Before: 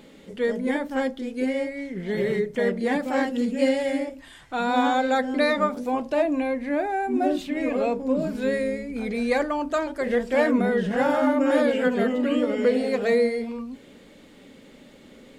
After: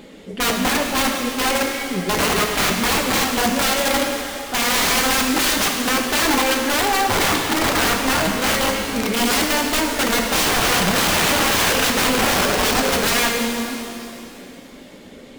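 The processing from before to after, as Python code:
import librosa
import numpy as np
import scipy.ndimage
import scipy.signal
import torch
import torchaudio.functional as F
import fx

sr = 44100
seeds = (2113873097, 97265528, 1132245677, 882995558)

y = fx.dereverb_blind(x, sr, rt60_s=0.59)
y = (np.mod(10.0 ** (22.0 / 20.0) * y + 1.0, 2.0) - 1.0) / 10.0 ** (22.0 / 20.0)
y = fx.rev_shimmer(y, sr, seeds[0], rt60_s=2.4, semitones=7, shimmer_db=-8, drr_db=2.0)
y = F.gain(torch.from_numpy(y), 7.0).numpy()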